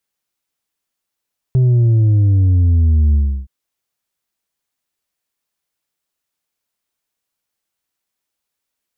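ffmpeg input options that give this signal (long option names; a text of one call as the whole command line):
ffmpeg -f lavfi -i "aevalsrc='0.335*clip((1.92-t)/0.33,0,1)*tanh(1.58*sin(2*PI*130*1.92/log(65/130)*(exp(log(65/130)*t/1.92)-1)))/tanh(1.58)':duration=1.92:sample_rate=44100" out.wav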